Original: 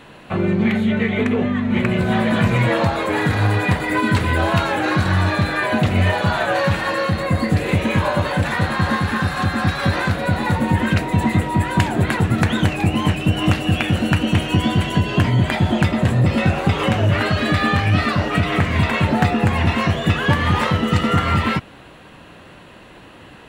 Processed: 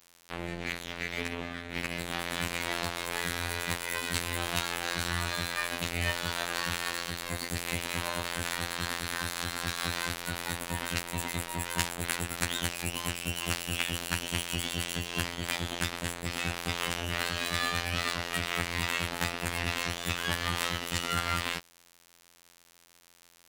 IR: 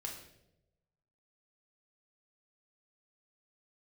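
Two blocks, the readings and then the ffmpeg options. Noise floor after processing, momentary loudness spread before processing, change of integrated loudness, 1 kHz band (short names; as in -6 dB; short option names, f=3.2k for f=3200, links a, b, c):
-61 dBFS, 3 LU, -13.5 dB, -15.0 dB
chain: -af "crystalizer=i=9.5:c=0,afftfilt=real='hypot(re,im)*cos(PI*b)':imag='0':win_size=2048:overlap=0.75,aeval=exprs='sgn(val(0))*max(abs(val(0))-0.0668,0)':c=same,volume=-14dB"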